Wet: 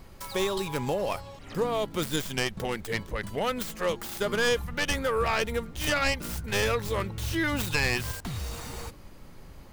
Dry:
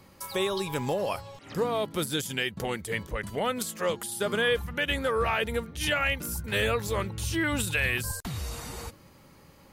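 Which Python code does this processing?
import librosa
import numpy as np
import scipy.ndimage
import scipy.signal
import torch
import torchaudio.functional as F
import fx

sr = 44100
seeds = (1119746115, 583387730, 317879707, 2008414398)

y = fx.tracing_dist(x, sr, depth_ms=0.29)
y = fx.dmg_noise_colour(y, sr, seeds[0], colour='brown', level_db=-46.0)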